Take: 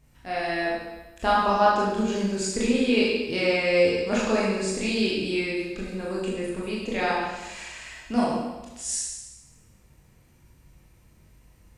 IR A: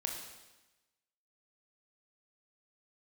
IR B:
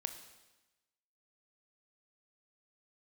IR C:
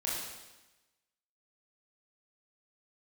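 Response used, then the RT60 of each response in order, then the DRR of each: C; 1.1, 1.1, 1.1 seconds; 0.5, 7.5, −6.5 decibels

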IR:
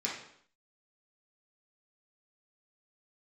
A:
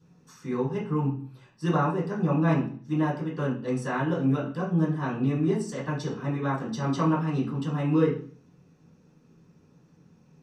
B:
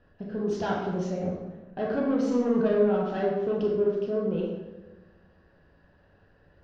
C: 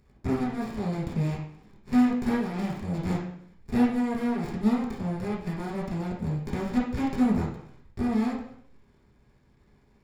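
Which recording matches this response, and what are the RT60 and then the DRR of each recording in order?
C; 0.45, 1.1, 0.65 seconds; −11.0, −3.5, −5.5 decibels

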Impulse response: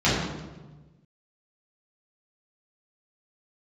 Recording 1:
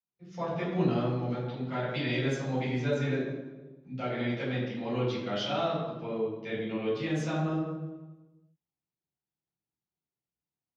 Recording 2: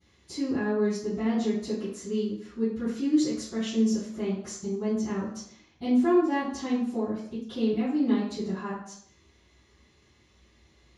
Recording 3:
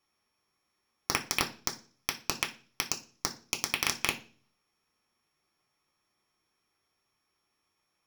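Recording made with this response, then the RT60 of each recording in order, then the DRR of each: 1; 1.2, 0.65, 0.40 seconds; −10.0, −22.5, 2.5 decibels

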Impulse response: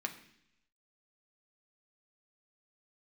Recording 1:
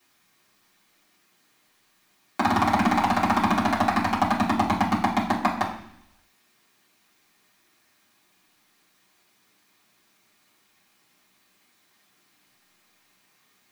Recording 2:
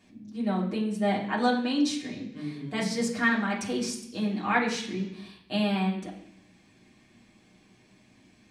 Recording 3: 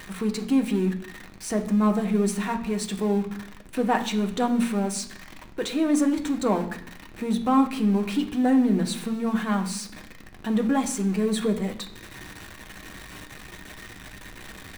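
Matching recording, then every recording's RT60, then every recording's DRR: 3; 0.70, 0.70, 0.70 seconds; −9.0, −4.5, 3.5 decibels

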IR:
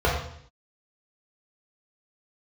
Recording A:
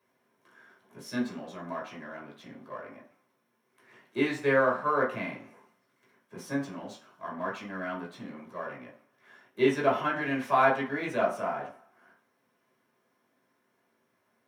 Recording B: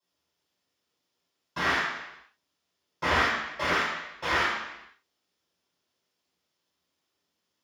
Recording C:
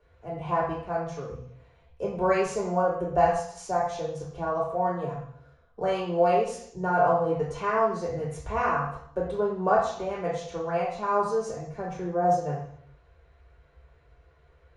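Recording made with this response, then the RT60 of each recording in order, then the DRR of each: C; 0.45, 0.90, 0.60 seconds; −4.5, −14.5, −5.5 decibels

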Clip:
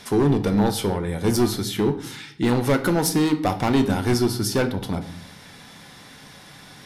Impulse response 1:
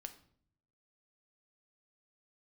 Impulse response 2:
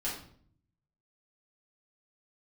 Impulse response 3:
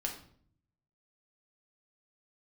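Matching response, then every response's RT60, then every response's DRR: 1; 0.60, 0.55, 0.55 seconds; 7.5, −7.5, 0.5 decibels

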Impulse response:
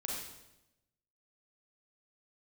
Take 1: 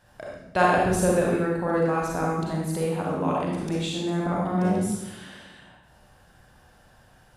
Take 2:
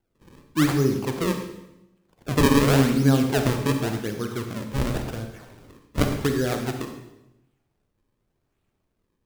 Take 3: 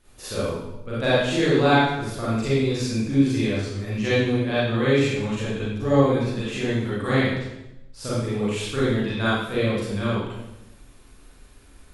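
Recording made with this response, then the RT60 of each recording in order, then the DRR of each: 1; 0.90, 0.90, 0.90 seconds; −3.5, 5.0, −10.5 decibels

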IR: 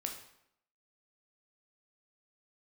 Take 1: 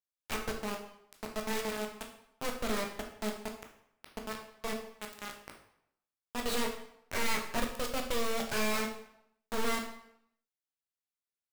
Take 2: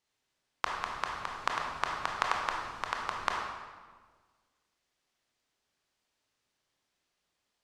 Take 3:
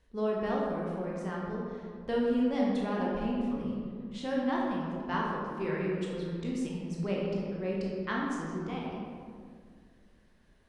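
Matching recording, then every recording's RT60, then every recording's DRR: 1; 0.75, 1.5, 2.1 seconds; 2.0, −0.5, −4.0 decibels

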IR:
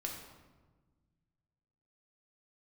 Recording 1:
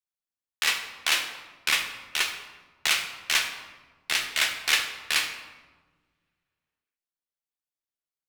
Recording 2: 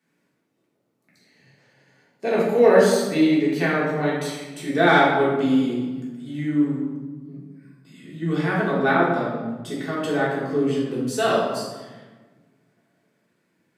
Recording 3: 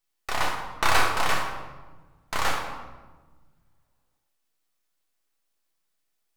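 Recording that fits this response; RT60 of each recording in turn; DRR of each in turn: 3; 1.3, 1.3, 1.3 seconds; 4.0, −7.0, −0.5 decibels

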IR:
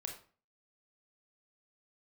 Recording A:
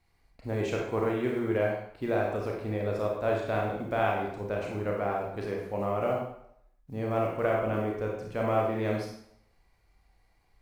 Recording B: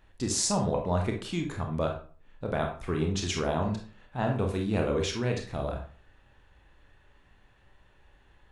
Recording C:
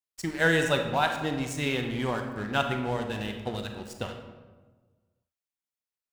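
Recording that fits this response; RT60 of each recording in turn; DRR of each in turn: B; 0.70, 0.40, 1.3 seconds; −1.5, 2.0, 4.5 decibels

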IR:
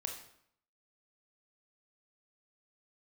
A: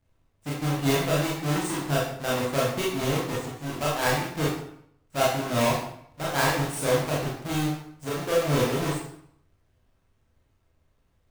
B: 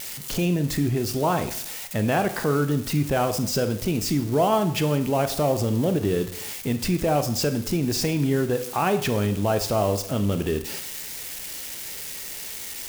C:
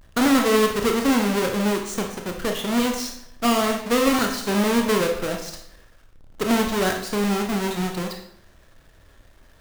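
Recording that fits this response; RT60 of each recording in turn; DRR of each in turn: C; 0.70, 0.70, 0.70 seconds; −6.5, 9.0, 2.5 decibels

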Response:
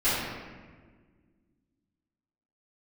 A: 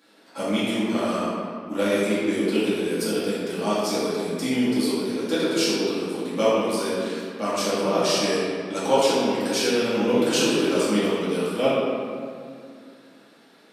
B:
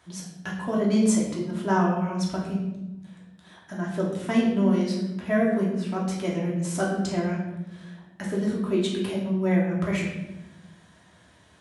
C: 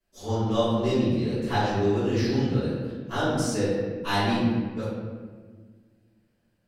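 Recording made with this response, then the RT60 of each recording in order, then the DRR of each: C; 2.2, 1.0, 1.5 seconds; −10.5, −5.0, −16.5 decibels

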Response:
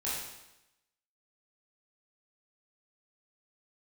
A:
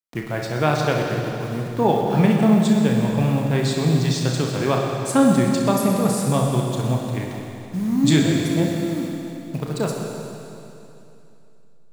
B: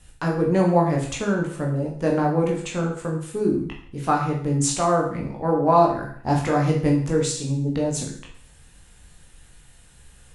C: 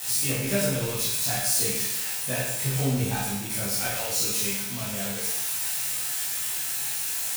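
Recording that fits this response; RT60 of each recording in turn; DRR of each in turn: C; 2.9, 0.60, 0.90 seconds; −0.5, −1.5, −9.0 decibels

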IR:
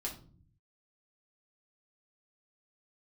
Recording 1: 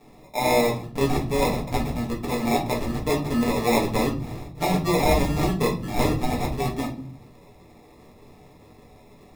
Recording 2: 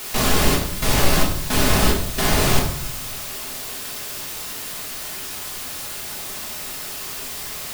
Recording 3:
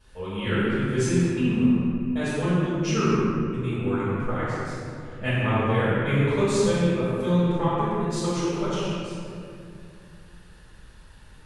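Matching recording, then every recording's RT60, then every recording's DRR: 1; 0.45, 0.70, 2.6 seconds; −3.0, −3.0, −14.5 decibels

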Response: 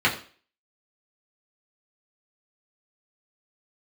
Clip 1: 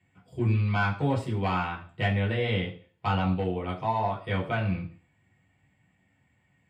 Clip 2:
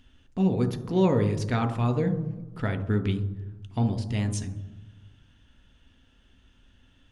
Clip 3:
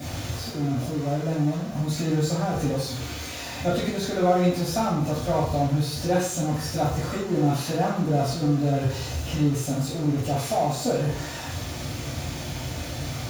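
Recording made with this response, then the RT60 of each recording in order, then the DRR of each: 1; 0.40, 1.1, 0.65 seconds; −5.0, 9.0, −8.0 decibels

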